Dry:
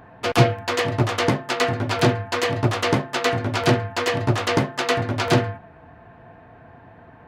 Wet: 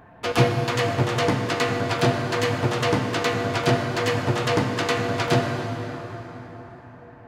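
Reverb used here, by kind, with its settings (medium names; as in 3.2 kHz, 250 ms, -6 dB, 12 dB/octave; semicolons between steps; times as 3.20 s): plate-style reverb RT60 4.5 s, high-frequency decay 0.6×, DRR 3 dB; trim -3 dB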